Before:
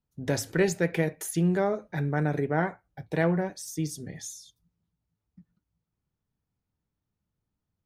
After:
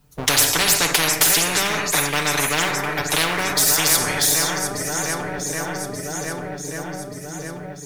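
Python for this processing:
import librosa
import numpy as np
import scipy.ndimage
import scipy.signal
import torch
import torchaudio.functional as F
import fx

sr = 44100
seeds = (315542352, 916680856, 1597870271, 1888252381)

y = fx.high_shelf(x, sr, hz=10000.0, db=3.5)
y = y + 0.79 * np.pad(y, (int(6.8 * sr / 1000.0), 0))[:len(y)]
y = fx.leveller(y, sr, passes=1)
y = fx.echo_swing(y, sr, ms=1182, ratio=1.5, feedback_pct=48, wet_db=-19.0)
y = fx.rev_schroeder(y, sr, rt60_s=0.52, comb_ms=38, drr_db=14.5)
y = fx.spectral_comp(y, sr, ratio=10.0)
y = y * librosa.db_to_amplitude(6.5)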